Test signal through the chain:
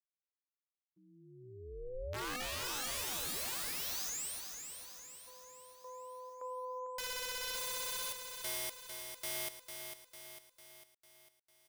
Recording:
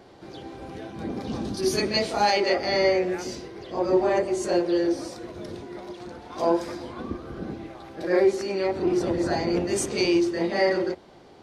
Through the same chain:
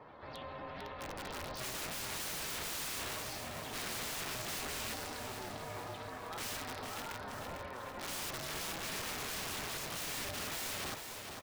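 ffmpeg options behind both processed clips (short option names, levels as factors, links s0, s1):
-af "aeval=exprs='0.0668*(abs(mod(val(0)/0.0668+3,4)-2)-1)':c=same,highpass=670,lowpass=5600,aemphasis=mode=reproduction:type=50fm,aeval=exprs='val(0)*sin(2*PI*250*n/s)':c=same,aeval=exprs='(mod(59.6*val(0)+1,2)-1)/59.6':c=same,afftdn=nr=15:nf=-65,alimiter=level_in=6.68:limit=0.0631:level=0:latency=1:release=20,volume=0.15,aecho=1:1:450|900|1350|1800|2250|2700:0.447|0.237|0.125|0.0665|0.0352|0.0187,volume=1.78"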